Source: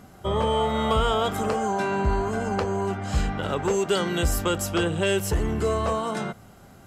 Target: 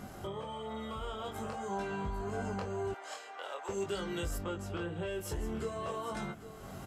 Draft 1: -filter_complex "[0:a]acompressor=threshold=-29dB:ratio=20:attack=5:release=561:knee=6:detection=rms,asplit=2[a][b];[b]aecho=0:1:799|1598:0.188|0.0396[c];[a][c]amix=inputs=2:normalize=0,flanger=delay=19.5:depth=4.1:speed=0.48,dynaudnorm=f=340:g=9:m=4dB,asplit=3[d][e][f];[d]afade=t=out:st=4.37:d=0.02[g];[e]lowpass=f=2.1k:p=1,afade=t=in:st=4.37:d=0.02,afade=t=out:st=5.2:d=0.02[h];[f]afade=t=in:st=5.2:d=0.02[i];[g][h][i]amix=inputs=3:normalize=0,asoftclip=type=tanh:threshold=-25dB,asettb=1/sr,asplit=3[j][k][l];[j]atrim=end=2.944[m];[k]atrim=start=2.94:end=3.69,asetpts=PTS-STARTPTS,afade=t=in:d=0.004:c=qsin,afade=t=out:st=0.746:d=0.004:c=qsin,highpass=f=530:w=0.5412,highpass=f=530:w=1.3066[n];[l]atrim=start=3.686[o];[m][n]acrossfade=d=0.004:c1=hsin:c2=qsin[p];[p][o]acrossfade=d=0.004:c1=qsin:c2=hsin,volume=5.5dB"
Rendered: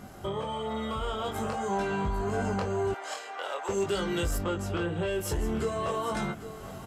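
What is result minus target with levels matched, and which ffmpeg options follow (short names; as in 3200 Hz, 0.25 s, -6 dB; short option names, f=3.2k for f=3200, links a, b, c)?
compressor: peak gain reduction -8 dB
-filter_complex "[0:a]acompressor=threshold=-37.5dB:ratio=20:attack=5:release=561:knee=6:detection=rms,asplit=2[a][b];[b]aecho=0:1:799|1598:0.188|0.0396[c];[a][c]amix=inputs=2:normalize=0,flanger=delay=19.5:depth=4.1:speed=0.48,dynaudnorm=f=340:g=9:m=4dB,asplit=3[d][e][f];[d]afade=t=out:st=4.37:d=0.02[g];[e]lowpass=f=2.1k:p=1,afade=t=in:st=4.37:d=0.02,afade=t=out:st=5.2:d=0.02[h];[f]afade=t=in:st=5.2:d=0.02[i];[g][h][i]amix=inputs=3:normalize=0,asoftclip=type=tanh:threshold=-25dB,asettb=1/sr,asplit=3[j][k][l];[j]atrim=end=2.944[m];[k]atrim=start=2.94:end=3.69,asetpts=PTS-STARTPTS,afade=t=in:d=0.004:c=qsin,afade=t=out:st=0.746:d=0.004:c=qsin,highpass=f=530:w=0.5412,highpass=f=530:w=1.3066[n];[l]atrim=start=3.686[o];[m][n]acrossfade=d=0.004:c1=hsin:c2=qsin[p];[p][o]acrossfade=d=0.004:c1=qsin:c2=hsin,volume=5.5dB"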